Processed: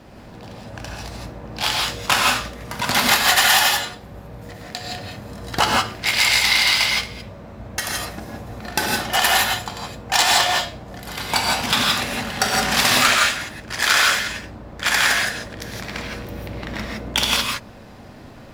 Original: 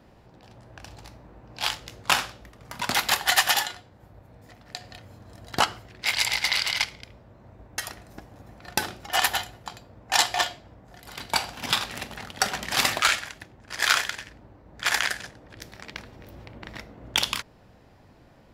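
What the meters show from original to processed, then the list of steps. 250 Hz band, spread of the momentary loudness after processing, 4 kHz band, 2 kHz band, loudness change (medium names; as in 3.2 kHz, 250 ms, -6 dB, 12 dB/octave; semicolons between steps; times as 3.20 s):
+12.0 dB, 19 LU, +8.0 dB, +8.0 dB, +7.0 dB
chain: power-law waveshaper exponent 0.7; crossover distortion -45.5 dBFS; gated-style reverb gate 190 ms rising, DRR -1.5 dB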